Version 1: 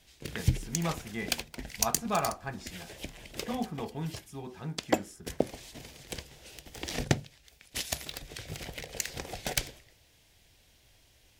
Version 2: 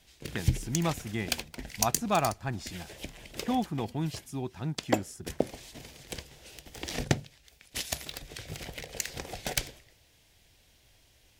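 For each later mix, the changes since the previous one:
speech +7.5 dB
reverb: off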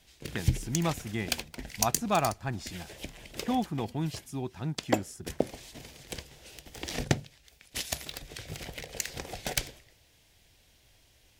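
nothing changed

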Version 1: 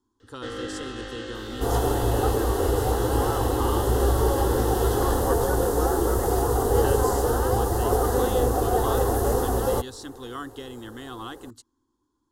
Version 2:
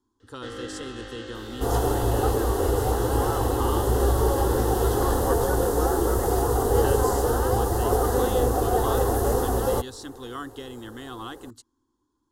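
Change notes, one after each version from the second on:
first sound −3.0 dB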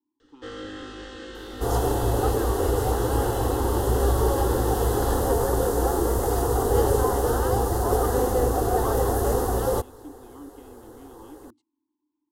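speech: add formant filter u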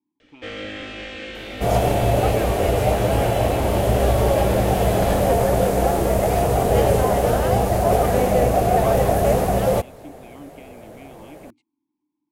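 master: remove phaser with its sweep stopped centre 630 Hz, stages 6

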